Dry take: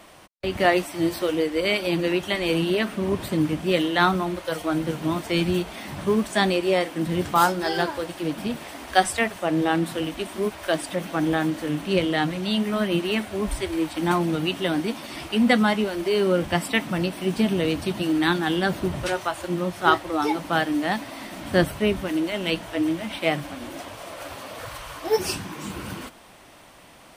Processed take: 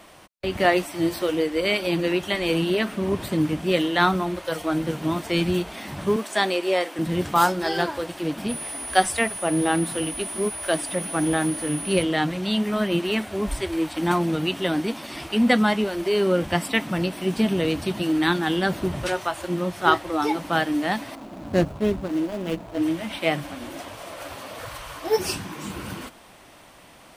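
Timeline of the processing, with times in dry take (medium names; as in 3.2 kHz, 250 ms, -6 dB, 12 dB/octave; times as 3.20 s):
6.16–6.99 s: high-pass 340 Hz
8.48–12.02 s: whistle 9.9 kHz -32 dBFS
21.15–22.82 s: median filter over 25 samples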